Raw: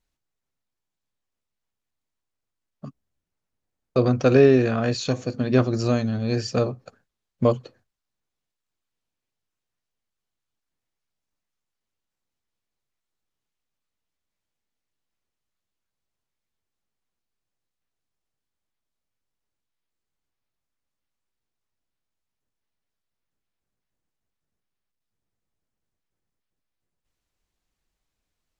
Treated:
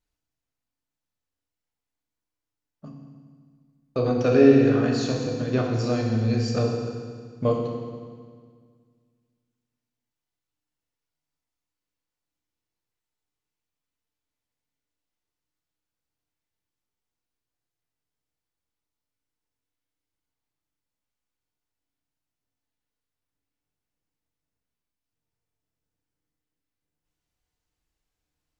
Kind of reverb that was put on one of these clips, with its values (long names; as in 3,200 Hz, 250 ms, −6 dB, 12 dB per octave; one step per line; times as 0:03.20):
feedback delay network reverb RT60 1.8 s, low-frequency decay 1.25×, high-frequency decay 0.95×, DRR −1 dB
level −5.5 dB